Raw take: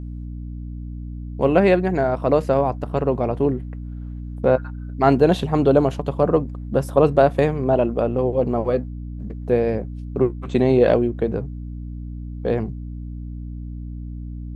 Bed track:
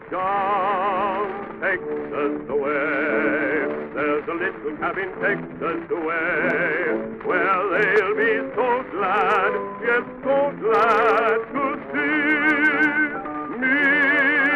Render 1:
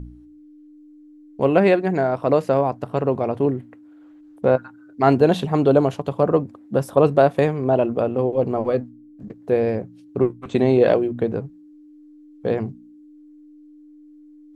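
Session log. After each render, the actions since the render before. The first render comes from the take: de-hum 60 Hz, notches 4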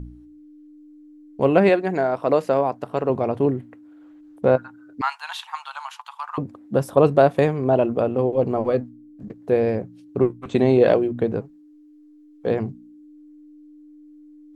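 1.69–3.10 s: peaking EQ 73 Hz -10.5 dB 2.5 oct; 5.01–6.38 s: Chebyshev high-pass 870 Hz, order 6; 11.41–12.47 s: peaking EQ 110 Hz -15 dB 1.4 oct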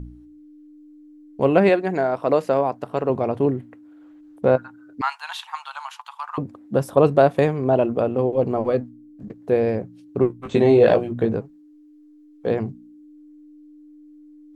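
10.38–11.36 s: doubling 18 ms -3.5 dB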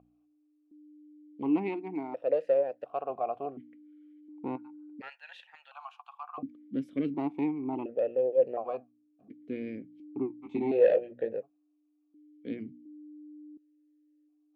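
valve stage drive 7 dB, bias 0.45; stepped vowel filter 1.4 Hz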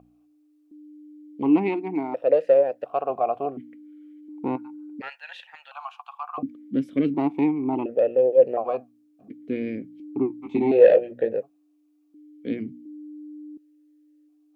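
trim +8.5 dB

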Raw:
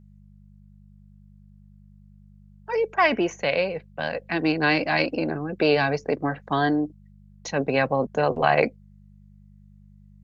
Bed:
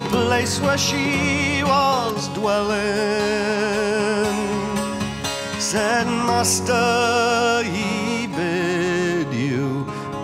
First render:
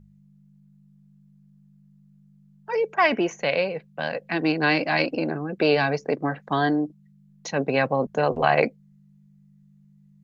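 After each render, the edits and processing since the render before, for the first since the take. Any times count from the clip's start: de-hum 50 Hz, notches 2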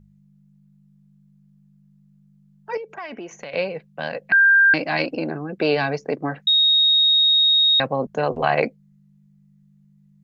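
2.77–3.54 s: compression 4:1, threshold -33 dBFS; 4.32–4.74 s: bleep 1.59 kHz -10.5 dBFS; 6.47–7.80 s: bleep 3.75 kHz -13 dBFS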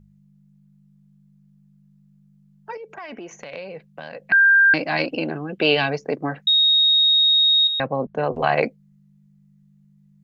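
2.71–4.20 s: compression 5:1, threshold -31 dBFS; 5.09–5.90 s: peaking EQ 3 kHz +12.5 dB 0.4 oct; 7.67–8.34 s: distance through air 290 m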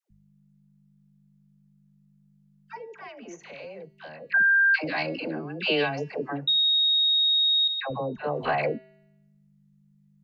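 feedback comb 130 Hz, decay 0.96 s, harmonics odd, mix 50%; phase dispersion lows, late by 107 ms, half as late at 720 Hz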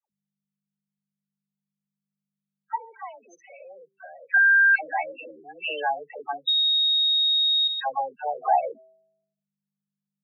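loudest bins only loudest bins 8; resonant high-pass 850 Hz, resonance Q 4.9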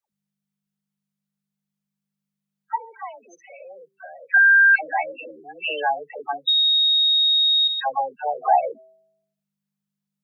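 trim +3.5 dB

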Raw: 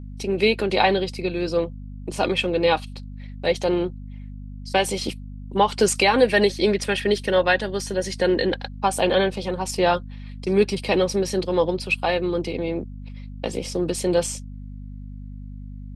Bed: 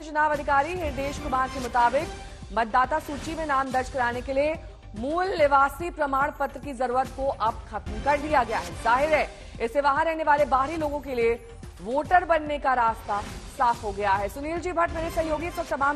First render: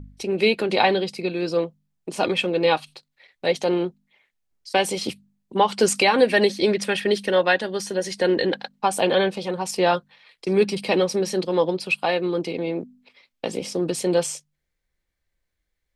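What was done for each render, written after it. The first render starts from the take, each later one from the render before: de-hum 50 Hz, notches 5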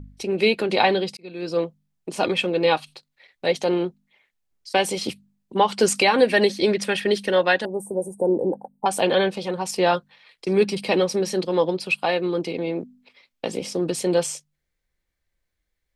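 1.17–1.61 s: fade in; 7.65–8.86 s: Chebyshev band-stop 900–8600 Hz, order 4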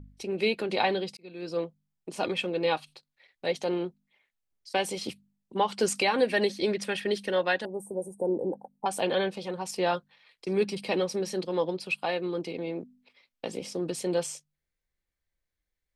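trim -7.5 dB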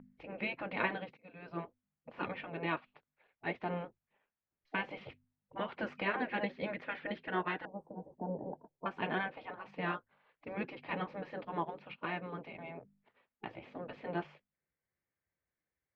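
spectral gate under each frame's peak -10 dB weak; low-pass 2.2 kHz 24 dB/octave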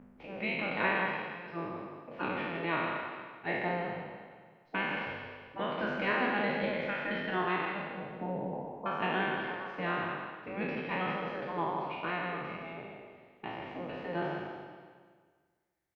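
spectral sustain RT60 1.67 s; on a send: delay 163 ms -7.5 dB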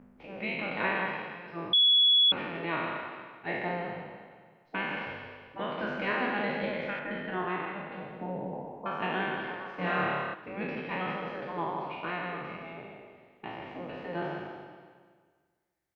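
1.73–2.32 s: bleep 3.38 kHz -18.5 dBFS; 6.99–7.92 s: distance through air 280 m; 9.76–10.34 s: flutter echo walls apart 4.7 m, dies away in 0.96 s

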